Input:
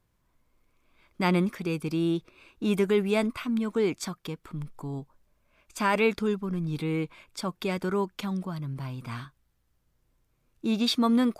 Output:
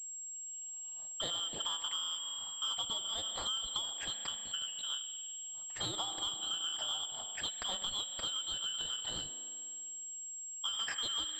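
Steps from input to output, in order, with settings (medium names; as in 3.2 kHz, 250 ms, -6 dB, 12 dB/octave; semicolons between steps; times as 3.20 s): four frequency bands reordered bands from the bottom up 2413; in parallel at -4 dB: hard clipper -23.5 dBFS, distortion -11 dB; on the sum: rotary cabinet horn 1 Hz, later 7.5 Hz, at 3.23 s; AM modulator 230 Hz, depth 30%; on a send at -7.5 dB: elliptic high-pass 190 Hz + reverberation RT60 2.6 s, pre-delay 35 ms; on the sum: compression 6:1, threshold -32 dBFS, peak gain reduction 13 dB; class-D stage that switches slowly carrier 7.6 kHz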